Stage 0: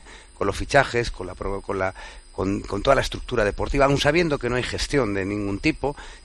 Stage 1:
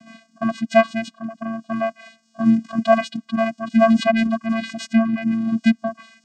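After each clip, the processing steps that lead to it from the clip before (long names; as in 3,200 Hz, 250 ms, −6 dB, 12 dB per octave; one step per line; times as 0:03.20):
reverb reduction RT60 0.89 s
channel vocoder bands 8, square 225 Hz
level +5 dB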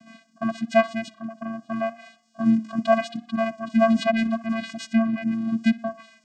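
tape delay 62 ms, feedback 53%, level −18.5 dB, low-pass 3,900 Hz
level −4 dB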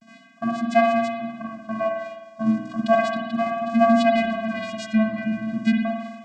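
pitch vibrato 0.35 Hz 37 cents
on a send at −1 dB: convolution reverb RT60 1.2 s, pre-delay 51 ms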